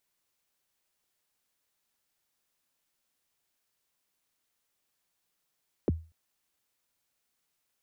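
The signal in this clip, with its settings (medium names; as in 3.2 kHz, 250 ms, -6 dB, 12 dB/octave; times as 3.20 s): kick drum length 0.24 s, from 520 Hz, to 81 Hz, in 24 ms, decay 0.32 s, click off, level -19.5 dB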